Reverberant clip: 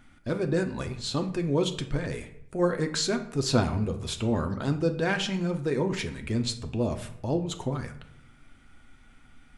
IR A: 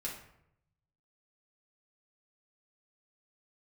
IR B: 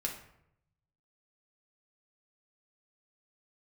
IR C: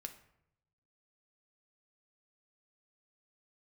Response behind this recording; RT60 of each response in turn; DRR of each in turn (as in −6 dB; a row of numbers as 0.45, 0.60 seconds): C; 0.75, 0.75, 0.75 seconds; −5.5, −1.0, 5.5 decibels